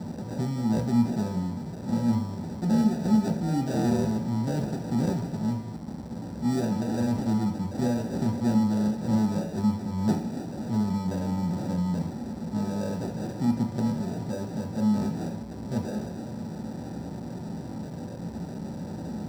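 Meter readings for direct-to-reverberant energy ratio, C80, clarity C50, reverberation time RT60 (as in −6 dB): 2.0 dB, 15.0 dB, 10.0 dB, 0.50 s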